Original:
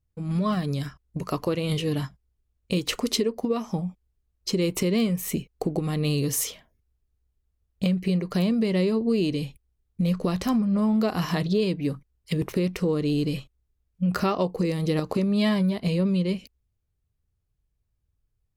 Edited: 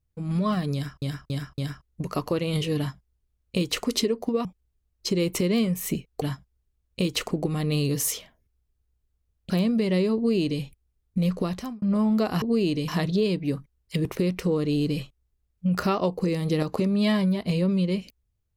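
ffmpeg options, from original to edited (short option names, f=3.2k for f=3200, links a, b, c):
-filter_complex "[0:a]asplit=11[a][b][c][d][e][f][g][h][i][j][k];[a]atrim=end=1.022[l];[b]atrim=start=0.738:end=1.022[m];[c]atrim=start=0.738:end=1.022[n];[d]atrim=start=0.738:end=3.612[o];[e]atrim=start=3.868:end=5.642[p];[f]atrim=start=1.938:end=3.032[q];[g]atrim=start=5.638:end=7.832[r];[h]atrim=start=8.328:end=10.65,asetpts=PTS-STARTPTS,afade=t=out:st=1.872:d=0.45[s];[i]atrim=start=10.65:end=11.252,asetpts=PTS-STARTPTS,afade=t=in:d=0.004:c=hsin[t];[j]atrim=start=8.988:end=9.452[u];[k]atrim=start=11.248[v];[l][m]acrossfade=d=0.004:c1=hsin:c2=hsin[w];[w][n]acrossfade=d=0.004:c1=hsin:c2=hsin[x];[x][o]acrossfade=d=0.004:c1=hsin:c2=hsin[y];[y][p]acrossfade=d=0.004:c1=hsin:c2=hsin[z];[z][q]acrossfade=d=0.004:c1=hsin:c2=hsin[aa];[aa][r]acrossfade=d=0.004:c1=hsin:c2=hsin[ab];[s][t]concat=n=2:v=0:a=1[ac];[ab][ac]acrossfade=d=0.004:c1=hsin:c2=hsin[ad];[ad][u]acrossfade=d=0.004:c1=hsin:c2=hsin[ae];[ae][v]acrossfade=d=0.004:c1=hsin:c2=hsin"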